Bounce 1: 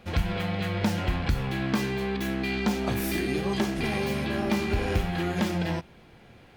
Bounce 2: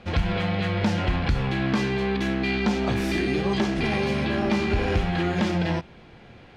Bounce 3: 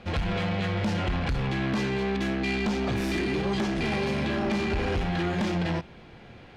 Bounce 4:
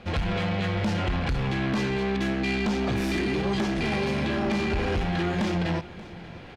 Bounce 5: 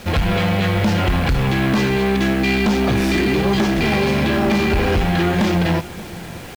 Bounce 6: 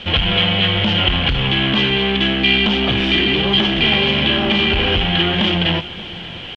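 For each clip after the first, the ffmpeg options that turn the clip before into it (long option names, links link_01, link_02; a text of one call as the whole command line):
ffmpeg -i in.wav -filter_complex "[0:a]lowpass=5600,asplit=2[link_01][link_02];[link_02]alimiter=limit=-21.5dB:level=0:latency=1:release=26,volume=-1dB[link_03];[link_01][link_03]amix=inputs=2:normalize=0,volume=-1dB" out.wav
ffmpeg -i in.wav -af "asoftclip=type=tanh:threshold=-22dB" out.wav
ffmpeg -i in.wav -af "areverse,acompressor=mode=upward:threshold=-38dB:ratio=2.5,areverse,aecho=1:1:583:0.112,volume=1dB" out.wav
ffmpeg -i in.wav -af "acrusher=bits=7:mix=0:aa=0.000001,volume=9dB" out.wav
ffmpeg -i in.wav -af "lowpass=frequency=3100:width_type=q:width=11,volume=-2dB" out.wav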